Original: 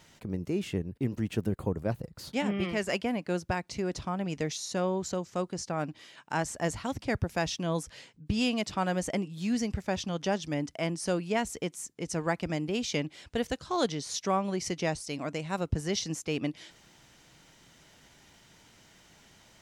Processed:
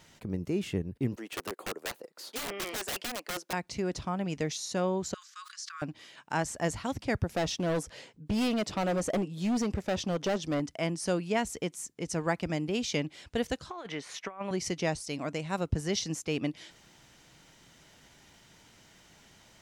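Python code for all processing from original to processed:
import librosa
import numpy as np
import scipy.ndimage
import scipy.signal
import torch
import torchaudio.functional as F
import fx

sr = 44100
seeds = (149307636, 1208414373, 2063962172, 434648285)

y = fx.chain(x, sr, fx.highpass(hz=350.0, slope=24),
    fx.overflow_wrap(gain_db=29.0), at=(1.16, 3.53))
y = fx.chain(y, sr, fx.cheby_ripple_highpass(hz=1100.0, ripple_db=6),
    fx.sustainer(db_per_s=50.0), at=(5.14, 5.82))
y = fx.chain(y, sr, fx.peak_eq(hz=500.0, db=7.0, octaves=1.9),
    fx.clip_hard(threshold_db=-25.5), at=(7.3, 10.6))
y = fx.chain(y, sr, fx.highpass(hz=700.0, slope=6),
    fx.high_shelf_res(hz=3200.0, db=-12.5, q=1.5),
    fx.over_compress(threshold_db=-36.0, ratio=-0.5), at=(13.7, 14.51))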